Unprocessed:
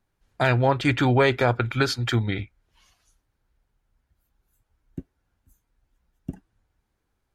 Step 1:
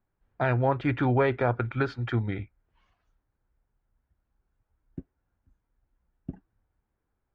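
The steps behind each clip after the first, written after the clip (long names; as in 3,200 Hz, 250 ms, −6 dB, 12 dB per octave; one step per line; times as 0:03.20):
low-pass filter 1,800 Hz 12 dB per octave
level −4 dB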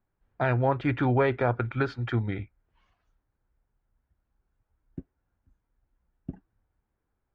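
no processing that can be heard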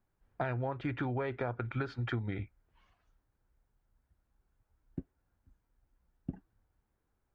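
downward compressor 16 to 1, threshold −31 dBFS, peak gain reduction 13 dB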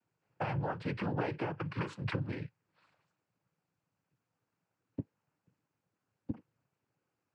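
cochlear-implant simulation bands 8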